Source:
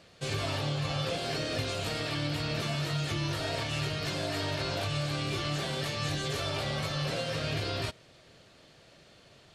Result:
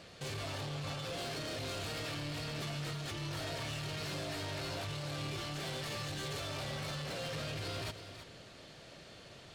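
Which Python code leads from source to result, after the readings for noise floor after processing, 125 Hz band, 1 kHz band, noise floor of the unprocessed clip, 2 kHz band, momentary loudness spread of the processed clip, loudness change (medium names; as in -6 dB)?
-54 dBFS, -8.0 dB, -7.0 dB, -58 dBFS, -7.0 dB, 13 LU, -7.5 dB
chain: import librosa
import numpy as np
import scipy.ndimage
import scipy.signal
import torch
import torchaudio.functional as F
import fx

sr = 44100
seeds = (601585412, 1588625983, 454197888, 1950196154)

p1 = fx.over_compress(x, sr, threshold_db=-36.0, ratio=-0.5)
p2 = x + (p1 * 10.0 ** (1.0 / 20.0))
p3 = 10.0 ** (-31.5 / 20.0) * np.tanh(p2 / 10.0 ** (-31.5 / 20.0))
p4 = p3 + 10.0 ** (-11.0 / 20.0) * np.pad(p3, (int(327 * sr / 1000.0), 0))[:len(p3)]
y = p4 * 10.0 ** (-6.0 / 20.0)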